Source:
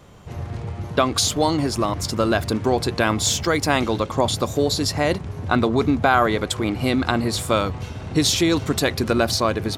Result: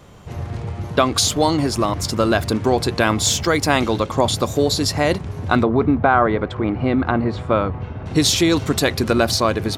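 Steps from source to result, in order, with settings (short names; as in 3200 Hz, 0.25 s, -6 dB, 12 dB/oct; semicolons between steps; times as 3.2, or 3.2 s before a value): 5.63–8.06 LPF 1700 Hz 12 dB/oct; gain +2.5 dB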